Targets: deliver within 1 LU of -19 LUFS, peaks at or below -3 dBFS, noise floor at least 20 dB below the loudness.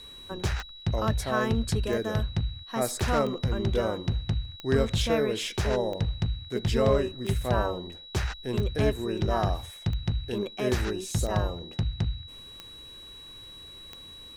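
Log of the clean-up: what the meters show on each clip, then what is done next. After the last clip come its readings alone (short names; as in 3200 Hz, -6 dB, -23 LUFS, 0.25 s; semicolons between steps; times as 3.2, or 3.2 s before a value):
clicks 11; steady tone 3900 Hz; tone level -44 dBFS; loudness -29.0 LUFS; peak -13.5 dBFS; loudness target -19.0 LUFS
-> de-click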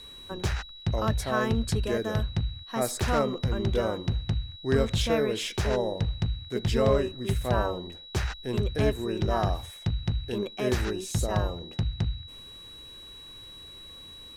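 clicks 0; steady tone 3900 Hz; tone level -44 dBFS
-> notch 3900 Hz, Q 30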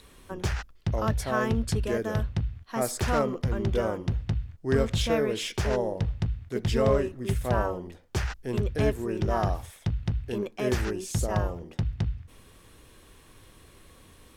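steady tone none; loudness -29.0 LUFS; peak -14.0 dBFS; loudness target -19.0 LUFS
-> gain +10 dB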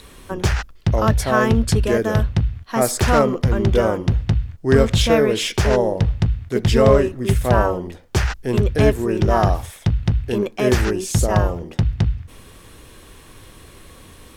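loudness -19.0 LUFS; peak -4.0 dBFS; noise floor -45 dBFS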